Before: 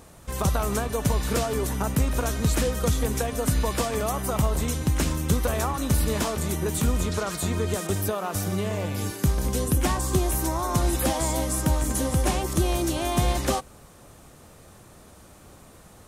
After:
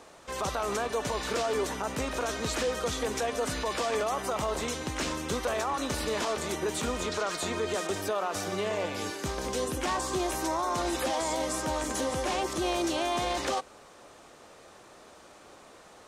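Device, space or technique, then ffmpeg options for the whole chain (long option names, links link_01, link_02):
DJ mixer with the lows and highs turned down: -filter_complex "[0:a]acrossover=split=300 7300:gain=0.126 1 0.126[link_01][link_02][link_03];[link_01][link_02][link_03]amix=inputs=3:normalize=0,alimiter=limit=-22.5dB:level=0:latency=1:release=19,volume=1.5dB"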